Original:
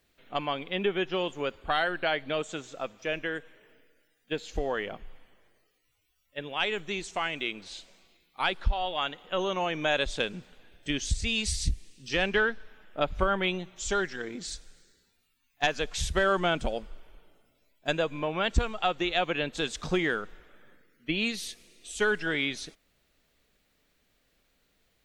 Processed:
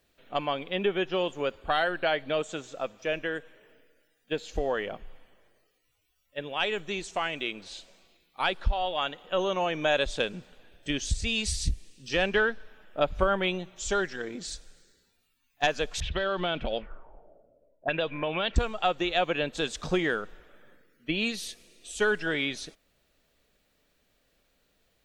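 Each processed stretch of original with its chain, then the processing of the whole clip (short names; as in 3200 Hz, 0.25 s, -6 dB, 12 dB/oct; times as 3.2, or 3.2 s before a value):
16–18.56 compressor, threshold -26 dBFS + air absorption 87 m + envelope low-pass 550–4000 Hz up, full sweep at -27.5 dBFS
whole clip: bell 570 Hz +3.5 dB 0.68 oct; notch 2100 Hz, Q 22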